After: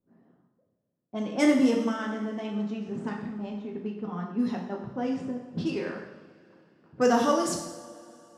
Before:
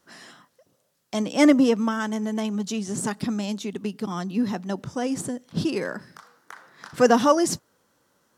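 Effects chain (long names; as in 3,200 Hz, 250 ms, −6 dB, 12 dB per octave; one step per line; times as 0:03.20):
0:03.09–0:03.52: compressor whose output falls as the input rises −30 dBFS, ratio −1
low-pass that shuts in the quiet parts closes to 310 Hz, open at −18 dBFS
coupled-rooms reverb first 0.82 s, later 3.4 s, from −19 dB, DRR −0.5 dB
level −7.5 dB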